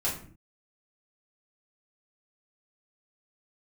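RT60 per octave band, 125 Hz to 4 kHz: 0.60, 0.65, 0.55, 0.45, 0.40, 0.30 seconds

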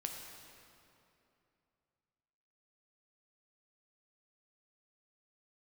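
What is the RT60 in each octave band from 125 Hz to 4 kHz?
3.2, 3.0, 2.9, 2.7, 2.4, 2.0 seconds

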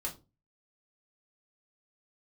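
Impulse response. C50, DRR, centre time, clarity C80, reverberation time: 14.0 dB, −2.5 dB, 14 ms, 21.0 dB, 0.30 s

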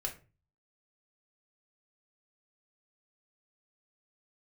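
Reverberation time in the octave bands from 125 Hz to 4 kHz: 0.65, 0.45, 0.40, 0.30, 0.30, 0.20 seconds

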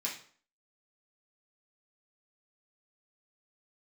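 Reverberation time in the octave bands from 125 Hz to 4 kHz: 0.45, 0.50, 0.50, 0.50, 0.45, 0.40 seconds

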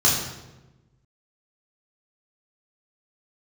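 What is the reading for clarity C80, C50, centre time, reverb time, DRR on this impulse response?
5.0 dB, 2.5 dB, 54 ms, 1.1 s, −5.0 dB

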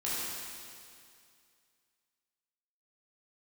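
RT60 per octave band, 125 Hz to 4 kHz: 2.3, 2.3, 2.3, 2.3, 2.3, 2.3 seconds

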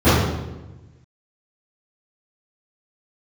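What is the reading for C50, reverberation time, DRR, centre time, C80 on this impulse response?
−2.5 dB, 1.1 s, −20.0 dB, 92 ms, 2.0 dB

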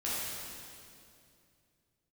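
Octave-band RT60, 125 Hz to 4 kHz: 3.4, 2.9, 2.7, 2.3, 2.2, 2.2 seconds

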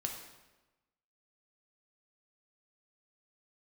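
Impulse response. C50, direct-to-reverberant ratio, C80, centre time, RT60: 5.0 dB, 1.5 dB, 7.5 dB, 35 ms, 1.1 s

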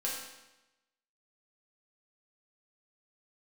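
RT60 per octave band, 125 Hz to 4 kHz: 1.0, 1.0, 1.0, 1.0, 1.0, 0.95 seconds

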